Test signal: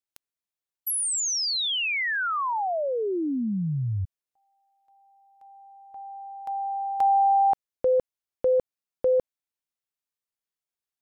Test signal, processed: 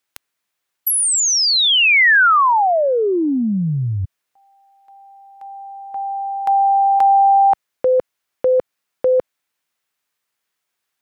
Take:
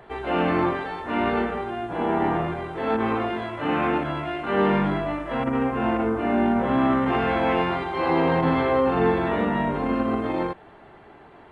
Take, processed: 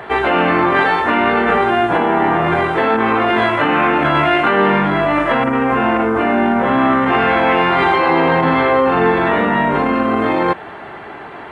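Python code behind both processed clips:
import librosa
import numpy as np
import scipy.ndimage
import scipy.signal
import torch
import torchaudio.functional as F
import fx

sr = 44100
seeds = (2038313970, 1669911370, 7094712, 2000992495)

p1 = fx.over_compress(x, sr, threshold_db=-29.0, ratio=-0.5)
p2 = x + (p1 * 10.0 ** (-1.0 / 20.0))
p3 = fx.highpass(p2, sr, hz=110.0, slope=6)
p4 = fx.peak_eq(p3, sr, hz=1700.0, db=6.0, octaves=2.0)
y = p4 * 10.0 ** (5.0 / 20.0)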